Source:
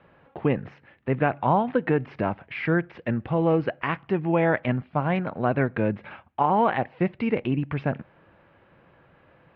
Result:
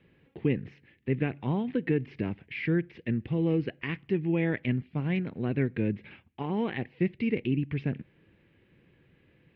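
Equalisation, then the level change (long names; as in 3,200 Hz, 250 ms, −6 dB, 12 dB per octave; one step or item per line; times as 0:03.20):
flat-topped bell 910 Hz −15.5 dB
−2.5 dB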